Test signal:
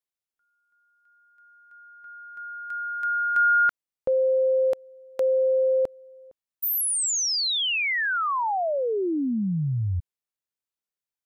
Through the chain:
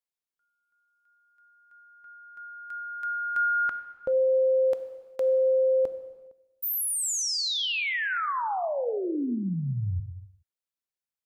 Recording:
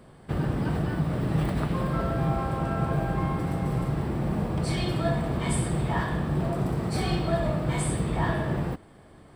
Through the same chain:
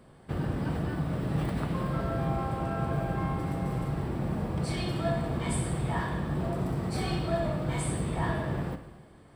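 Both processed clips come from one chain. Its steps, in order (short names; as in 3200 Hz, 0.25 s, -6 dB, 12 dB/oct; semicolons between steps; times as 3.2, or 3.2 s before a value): non-linear reverb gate 0.44 s falling, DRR 9 dB; gain -4 dB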